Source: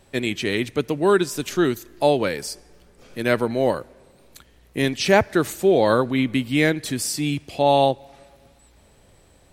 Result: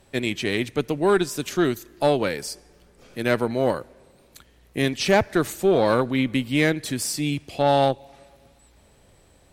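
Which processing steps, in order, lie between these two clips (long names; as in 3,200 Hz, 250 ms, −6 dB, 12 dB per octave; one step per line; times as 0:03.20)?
tube saturation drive 9 dB, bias 0.4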